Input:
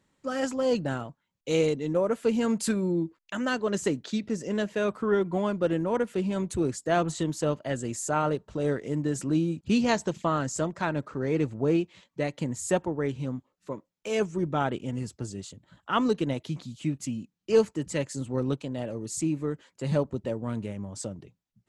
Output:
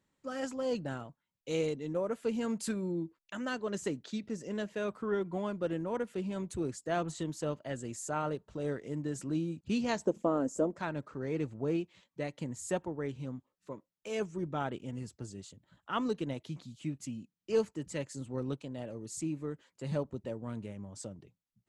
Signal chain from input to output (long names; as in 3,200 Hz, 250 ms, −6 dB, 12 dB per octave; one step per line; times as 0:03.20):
0:10.05–0:10.77: octave-band graphic EQ 125/250/500/2,000/4,000 Hz −11/+10/+9/−8/−12 dB
level −8 dB